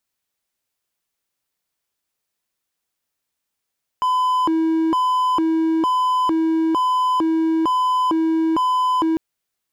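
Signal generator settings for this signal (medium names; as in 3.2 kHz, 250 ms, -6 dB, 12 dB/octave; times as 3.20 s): siren hi-lo 323–1010 Hz 1.1 per s triangle -13.5 dBFS 5.15 s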